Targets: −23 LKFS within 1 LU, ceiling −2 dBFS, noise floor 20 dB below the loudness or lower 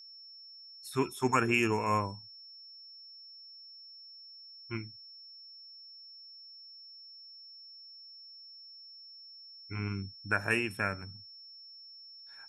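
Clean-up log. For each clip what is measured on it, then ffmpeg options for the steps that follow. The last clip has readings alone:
interfering tone 5,400 Hz; level of the tone −49 dBFS; integrated loudness −32.5 LKFS; sample peak −13.5 dBFS; target loudness −23.0 LKFS
→ -af "bandreject=frequency=5400:width=30"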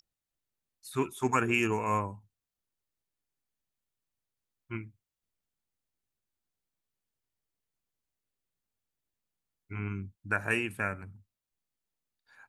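interfering tone none found; integrated loudness −32.0 LKFS; sample peak −13.5 dBFS; target loudness −23.0 LKFS
→ -af "volume=9dB"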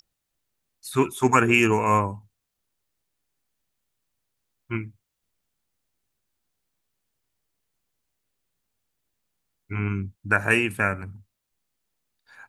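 integrated loudness −23.0 LKFS; sample peak −4.5 dBFS; background noise floor −81 dBFS

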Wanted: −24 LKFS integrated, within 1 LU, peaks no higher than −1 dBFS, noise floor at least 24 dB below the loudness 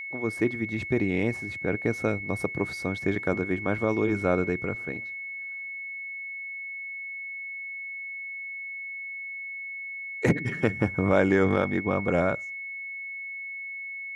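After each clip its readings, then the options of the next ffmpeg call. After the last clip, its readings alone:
interfering tone 2,200 Hz; level of the tone −34 dBFS; integrated loudness −29.0 LKFS; sample peak −8.5 dBFS; target loudness −24.0 LKFS
→ -af "bandreject=frequency=2200:width=30"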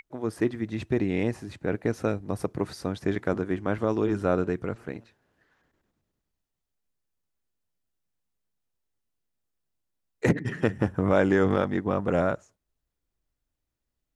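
interfering tone none found; integrated loudness −27.5 LKFS; sample peak −8.5 dBFS; target loudness −24.0 LKFS
→ -af "volume=3.5dB"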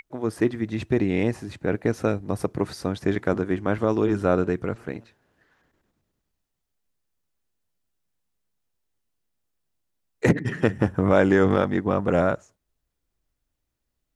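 integrated loudness −24.0 LKFS; sample peak −5.0 dBFS; background noise floor −80 dBFS

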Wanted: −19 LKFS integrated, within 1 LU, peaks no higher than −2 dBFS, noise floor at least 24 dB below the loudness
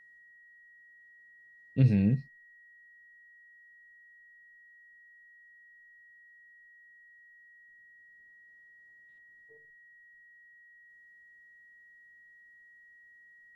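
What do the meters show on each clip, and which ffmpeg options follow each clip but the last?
interfering tone 1,900 Hz; level of the tone −55 dBFS; integrated loudness −27.5 LKFS; sample peak −12.5 dBFS; target loudness −19.0 LKFS
→ -af "bandreject=frequency=1900:width=30"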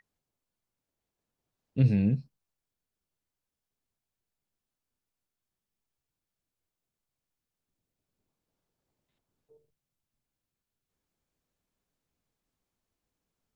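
interfering tone none found; integrated loudness −27.5 LKFS; sample peak −12.5 dBFS; target loudness −19.0 LKFS
→ -af "volume=8.5dB"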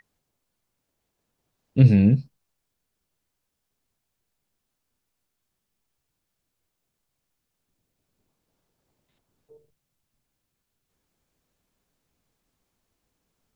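integrated loudness −19.0 LKFS; sample peak −4.0 dBFS; background noise floor −81 dBFS

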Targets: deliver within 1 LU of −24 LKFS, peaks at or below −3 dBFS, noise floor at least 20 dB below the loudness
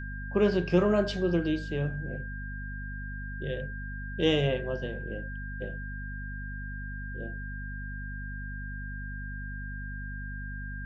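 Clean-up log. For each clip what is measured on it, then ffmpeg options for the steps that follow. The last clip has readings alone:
mains hum 50 Hz; hum harmonics up to 250 Hz; level of the hum −36 dBFS; interfering tone 1,600 Hz; level of the tone −41 dBFS; integrated loudness −32.5 LKFS; sample peak −12.0 dBFS; target loudness −24.0 LKFS
→ -af "bandreject=frequency=50:width_type=h:width=6,bandreject=frequency=100:width_type=h:width=6,bandreject=frequency=150:width_type=h:width=6,bandreject=frequency=200:width_type=h:width=6,bandreject=frequency=250:width_type=h:width=6"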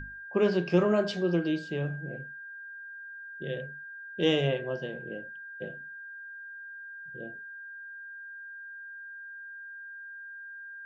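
mains hum none found; interfering tone 1,600 Hz; level of the tone −41 dBFS
→ -af "bandreject=frequency=1600:width=30"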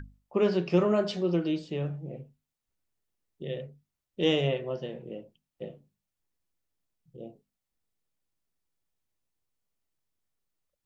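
interfering tone none found; integrated loudness −29.0 LKFS; sample peak −12.5 dBFS; target loudness −24.0 LKFS
→ -af "volume=5dB"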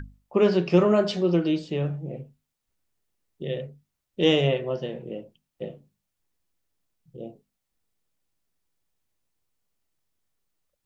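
integrated loudness −24.0 LKFS; sample peak −7.5 dBFS; background noise floor −82 dBFS

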